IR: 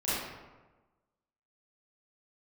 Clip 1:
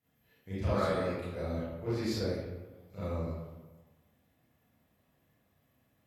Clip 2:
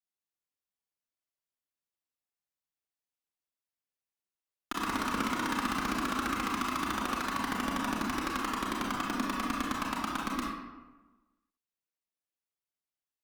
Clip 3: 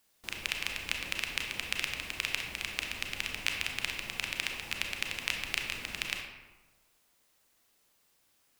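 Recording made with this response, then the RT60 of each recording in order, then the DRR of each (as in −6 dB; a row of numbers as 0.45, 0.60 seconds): 1; 1.2, 1.2, 1.2 seconds; −12.5, −3.5, 1.5 decibels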